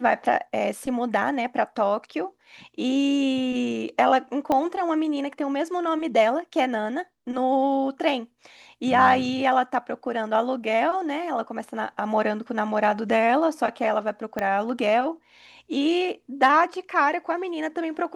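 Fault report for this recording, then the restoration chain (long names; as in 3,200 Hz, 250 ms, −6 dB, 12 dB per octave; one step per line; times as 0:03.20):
0:04.52: click −12 dBFS
0:14.39: click −14 dBFS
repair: click removal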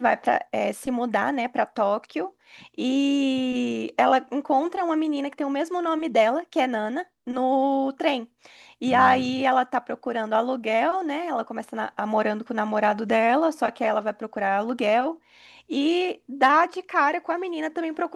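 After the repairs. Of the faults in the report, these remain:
0:04.52: click
0:14.39: click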